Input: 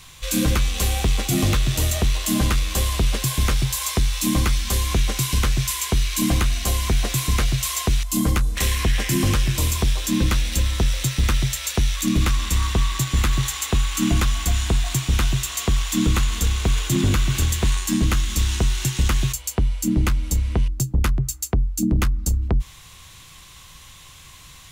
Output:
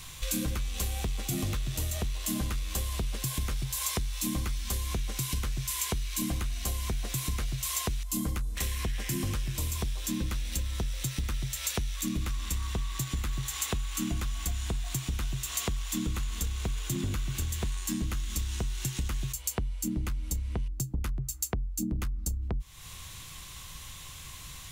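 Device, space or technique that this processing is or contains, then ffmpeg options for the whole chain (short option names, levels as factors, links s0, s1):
ASMR close-microphone chain: -af "lowshelf=f=170:g=4,acompressor=threshold=0.0398:ratio=6,highshelf=f=7900:g=5.5,volume=0.794"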